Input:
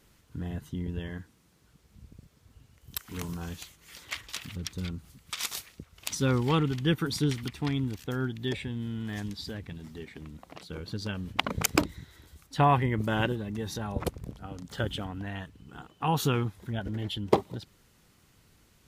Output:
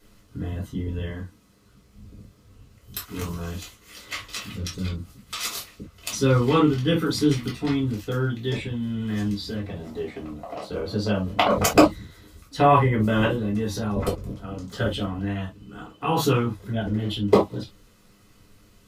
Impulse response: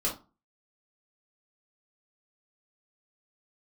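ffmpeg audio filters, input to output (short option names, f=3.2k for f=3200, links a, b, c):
-filter_complex "[0:a]asettb=1/sr,asplit=3[a][b][c];[a]atrim=end=9.634[d];[b]atrim=start=9.63:end=11.81,asetpts=PTS-STARTPTS,afade=t=in:d=0.004:c=qsin,afade=t=out:st=2.176:d=0.004:c=qsin,equalizer=f=670:t=o:w=1:g=12.5[e];[c]atrim=start=11.806[f];[d][e]acrossfade=d=0.004:c1=hsin:c2=qsin[g];[g][f]acrossfade=d=0.004:c1=qsin:c2=hsin[h];[1:a]atrim=start_sample=2205,atrim=end_sample=3528[i];[h][i]afir=irnorm=-1:irlink=0,volume=-1dB"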